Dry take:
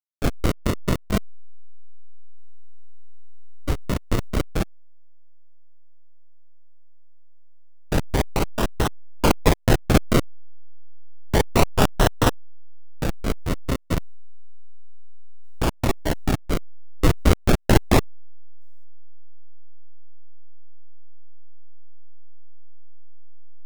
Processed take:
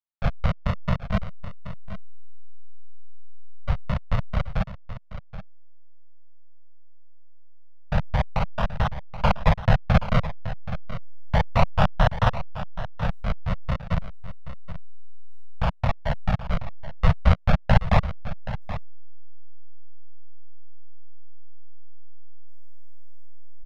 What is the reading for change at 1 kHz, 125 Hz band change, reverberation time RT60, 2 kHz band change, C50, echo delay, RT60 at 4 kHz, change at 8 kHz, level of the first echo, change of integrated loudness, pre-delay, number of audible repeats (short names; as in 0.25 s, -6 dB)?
0.0 dB, +0.5 dB, none, -2.0 dB, none, 0.777 s, none, under -20 dB, -13.0 dB, -2.5 dB, none, 1